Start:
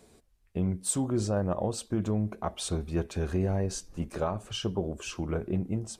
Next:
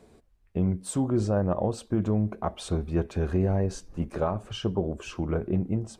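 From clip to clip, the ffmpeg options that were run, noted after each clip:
-af "highshelf=f=3.2k:g=-11.5,volume=3.5dB"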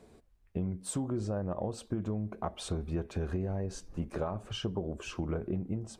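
-af "acompressor=threshold=-28dB:ratio=6,volume=-2dB"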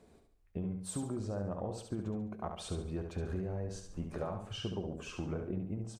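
-af "aecho=1:1:70|140|210|280|350:0.501|0.195|0.0762|0.0297|0.0116,volume=-4.5dB"

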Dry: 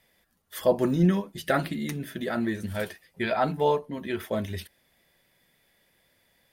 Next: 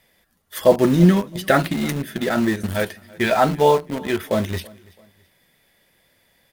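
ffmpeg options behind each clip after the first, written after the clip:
-filter_complex "[0:a]asplit=2[a][b];[b]acrusher=bits=4:mix=0:aa=0.000001,volume=-8.5dB[c];[a][c]amix=inputs=2:normalize=0,aecho=1:1:332|664:0.0668|0.0241,volume=5.5dB"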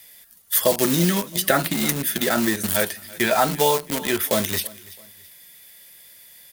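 -filter_complex "[0:a]acrossover=split=120|1500[a][b][c];[a]acompressor=threshold=-42dB:ratio=4[d];[b]acompressor=threshold=-16dB:ratio=4[e];[c]acompressor=threshold=-36dB:ratio=4[f];[d][e][f]amix=inputs=3:normalize=0,crystalizer=i=8:c=0,volume=-2dB"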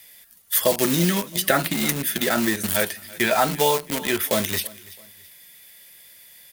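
-af "equalizer=f=2.4k:w=1.5:g=2.5,volume=-1dB"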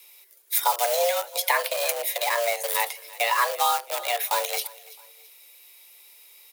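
-af "afreqshift=350,volume=-3dB"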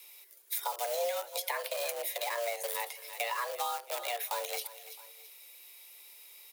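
-filter_complex "[0:a]acrossover=split=370[a][b];[b]acompressor=threshold=-32dB:ratio=4[c];[a][c]amix=inputs=2:normalize=0,volume=-2dB"

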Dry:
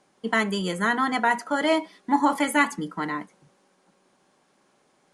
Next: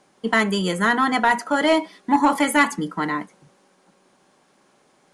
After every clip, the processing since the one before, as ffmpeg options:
-af "asoftclip=type=tanh:threshold=-11.5dB,volume=5dB"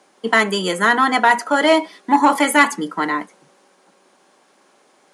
-af "highpass=280,volume=4.5dB"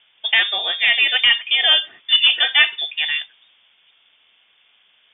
-af "lowpass=f=3.2k:t=q:w=0.5098,lowpass=f=3.2k:t=q:w=0.6013,lowpass=f=3.2k:t=q:w=0.9,lowpass=f=3.2k:t=q:w=2.563,afreqshift=-3800,volume=-1dB"

